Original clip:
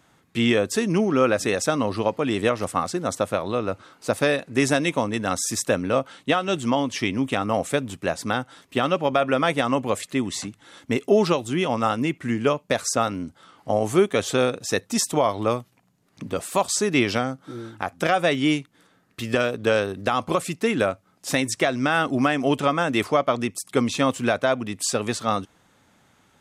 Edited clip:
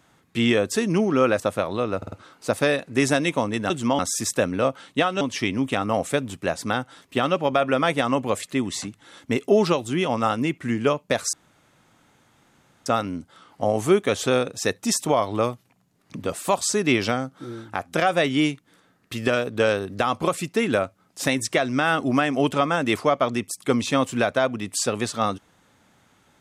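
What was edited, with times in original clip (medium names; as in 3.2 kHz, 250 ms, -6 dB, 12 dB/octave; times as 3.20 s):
1.40–3.15 s: delete
3.72 s: stutter 0.05 s, 4 plays
6.52–6.81 s: move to 5.30 s
12.93 s: insert room tone 1.53 s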